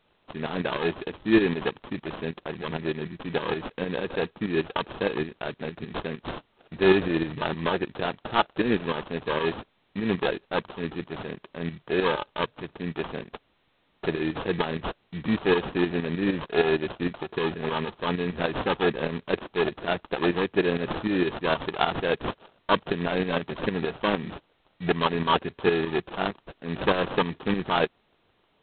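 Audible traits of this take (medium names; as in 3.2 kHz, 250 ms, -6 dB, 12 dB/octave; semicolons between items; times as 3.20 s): a quantiser's noise floor 12-bit, dither triangular; tremolo saw up 6.5 Hz, depth 65%; aliases and images of a low sample rate 2.1 kHz, jitter 0%; G.726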